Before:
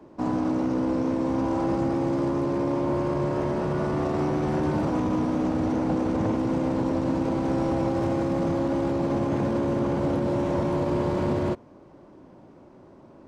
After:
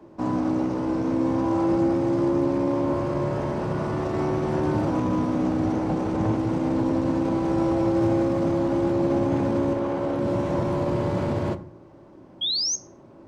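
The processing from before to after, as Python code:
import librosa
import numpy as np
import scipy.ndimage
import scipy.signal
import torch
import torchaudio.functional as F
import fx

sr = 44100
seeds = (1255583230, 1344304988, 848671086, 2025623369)

y = fx.bass_treble(x, sr, bass_db=-9, treble_db=-5, at=(9.73, 10.19))
y = fx.spec_paint(y, sr, seeds[0], shape='rise', start_s=12.41, length_s=0.35, low_hz=3200.0, high_hz=6600.0, level_db=-25.0)
y = fx.rev_fdn(y, sr, rt60_s=0.59, lf_ratio=1.45, hf_ratio=0.6, size_ms=53.0, drr_db=9.0)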